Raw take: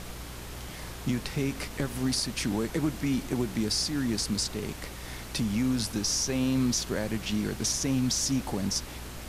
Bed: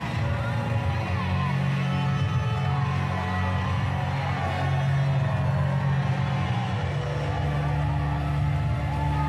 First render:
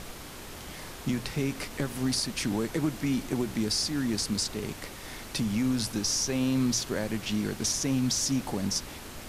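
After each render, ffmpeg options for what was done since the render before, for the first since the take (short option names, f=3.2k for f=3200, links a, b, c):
-af "bandreject=f=60:t=h:w=4,bandreject=f=120:t=h:w=4,bandreject=f=180:t=h:w=4"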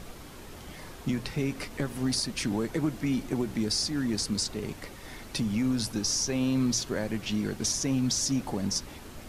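-af "afftdn=nr=6:nf=-43"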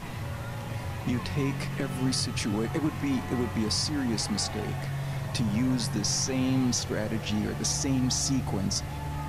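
-filter_complex "[1:a]volume=-9.5dB[a];[0:a][a]amix=inputs=2:normalize=0"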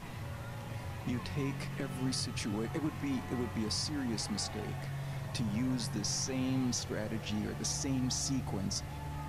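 -af "volume=-7dB"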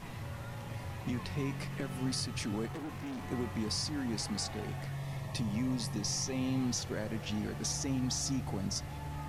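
-filter_complex "[0:a]asettb=1/sr,asplit=3[a][b][c];[a]atrim=end=2.664[d];[b]atrim=start=2.66:end=3.24,asetpts=PTS-STARTPTS,afade=t=in:d=0.004:c=qsin,afade=t=out:st=0.576:d=0.004:c=qsin,asoftclip=type=hard:threshold=-38dB[e];[c]atrim=start=3.236[f];[d][e]acrossfade=d=0.004:c1=hsin:c2=qsin[g];[g][f]acrossfade=d=0.004:c1=qsin:c2=hsin,asettb=1/sr,asplit=3[h][i][j];[h]atrim=end=4.954[k];[i]atrim=start=4.95:end=6.59,asetpts=PTS-STARTPTS,afade=t=in:d=0.004:c=qsin,afade=t=out:st=1.636:d=0.004:c=qsin,asuperstop=centerf=1500:order=8:qfactor=6.1[l];[j]atrim=start=6.586[m];[k][l]acrossfade=d=0.004:c1=hsin:c2=qsin[n];[n][m]acrossfade=d=0.004:c1=qsin:c2=hsin"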